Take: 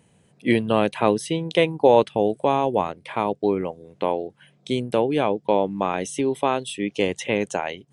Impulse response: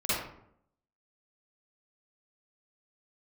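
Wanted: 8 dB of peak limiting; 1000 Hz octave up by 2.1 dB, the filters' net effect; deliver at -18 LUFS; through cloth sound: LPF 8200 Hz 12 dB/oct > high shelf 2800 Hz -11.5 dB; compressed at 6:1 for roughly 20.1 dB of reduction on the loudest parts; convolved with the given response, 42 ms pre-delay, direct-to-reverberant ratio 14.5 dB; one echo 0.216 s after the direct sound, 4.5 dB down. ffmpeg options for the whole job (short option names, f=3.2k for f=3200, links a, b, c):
-filter_complex "[0:a]equalizer=f=1k:t=o:g=4,acompressor=threshold=-31dB:ratio=6,alimiter=limit=-23.5dB:level=0:latency=1,aecho=1:1:216:0.596,asplit=2[a][b];[1:a]atrim=start_sample=2205,adelay=42[c];[b][c]afir=irnorm=-1:irlink=0,volume=-24.5dB[d];[a][d]amix=inputs=2:normalize=0,lowpass=8.2k,highshelf=f=2.8k:g=-11.5,volume=19dB"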